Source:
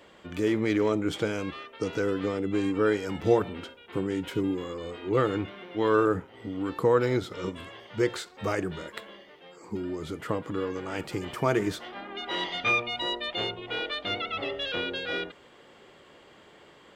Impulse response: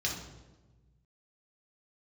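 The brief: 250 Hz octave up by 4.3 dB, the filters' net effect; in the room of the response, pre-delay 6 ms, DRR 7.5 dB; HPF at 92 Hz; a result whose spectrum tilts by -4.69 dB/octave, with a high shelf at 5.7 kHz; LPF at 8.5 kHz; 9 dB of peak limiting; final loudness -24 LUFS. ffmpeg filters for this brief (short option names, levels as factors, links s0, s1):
-filter_complex "[0:a]highpass=92,lowpass=8500,equalizer=f=250:t=o:g=6,highshelf=f=5700:g=-6.5,alimiter=limit=0.15:level=0:latency=1,asplit=2[s0][s1];[1:a]atrim=start_sample=2205,adelay=6[s2];[s1][s2]afir=irnorm=-1:irlink=0,volume=0.224[s3];[s0][s3]amix=inputs=2:normalize=0,volume=1.58"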